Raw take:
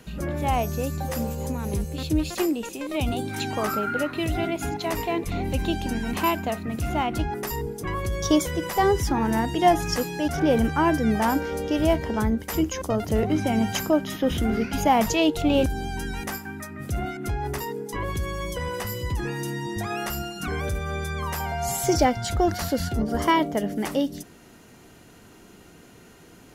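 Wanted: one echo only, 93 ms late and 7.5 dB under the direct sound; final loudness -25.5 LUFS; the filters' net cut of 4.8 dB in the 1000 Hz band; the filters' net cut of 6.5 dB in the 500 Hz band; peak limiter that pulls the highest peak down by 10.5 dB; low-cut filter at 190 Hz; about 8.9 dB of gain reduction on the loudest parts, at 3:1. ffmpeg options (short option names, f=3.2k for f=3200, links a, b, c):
-af "highpass=190,equalizer=f=500:t=o:g=-8,equalizer=f=1k:t=o:g=-3,acompressor=threshold=-31dB:ratio=3,alimiter=level_in=5dB:limit=-24dB:level=0:latency=1,volume=-5dB,aecho=1:1:93:0.422,volume=11.5dB"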